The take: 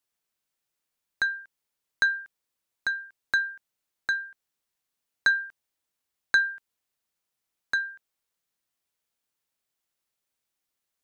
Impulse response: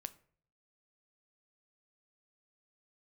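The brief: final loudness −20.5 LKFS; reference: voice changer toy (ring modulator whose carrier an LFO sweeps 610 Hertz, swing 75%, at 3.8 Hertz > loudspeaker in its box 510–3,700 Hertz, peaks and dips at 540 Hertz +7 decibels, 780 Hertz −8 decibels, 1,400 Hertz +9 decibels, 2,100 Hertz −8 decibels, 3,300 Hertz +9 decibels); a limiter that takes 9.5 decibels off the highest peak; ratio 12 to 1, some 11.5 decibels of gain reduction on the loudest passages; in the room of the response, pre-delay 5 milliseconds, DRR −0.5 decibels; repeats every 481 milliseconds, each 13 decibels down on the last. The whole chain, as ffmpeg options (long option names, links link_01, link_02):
-filter_complex "[0:a]acompressor=threshold=-29dB:ratio=12,alimiter=limit=-22.5dB:level=0:latency=1,aecho=1:1:481|962|1443:0.224|0.0493|0.0108,asplit=2[link_01][link_02];[1:a]atrim=start_sample=2205,adelay=5[link_03];[link_02][link_03]afir=irnorm=-1:irlink=0,volume=4.5dB[link_04];[link_01][link_04]amix=inputs=2:normalize=0,aeval=exprs='val(0)*sin(2*PI*610*n/s+610*0.75/3.8*sin(2*PI*3.8*n/s))':channel_layout=same,highpass=510,equalizer=frequency=540:width_type=q:width=4:gain=7,equalizer=frequency=780:width_type=q:width=4:gain=-8,equalizer=frequency=1400:width_type=q:width=4:gain=9,equalizer=frequency=2100:width_type=q:width=4:gain=-8,equalizer=frequency=3300:width_type=q:width=4:gain=9,lowpass=frequency=3700:width=0.5412,lowpass=frequency=3700:width=1.3066,volume=17dB"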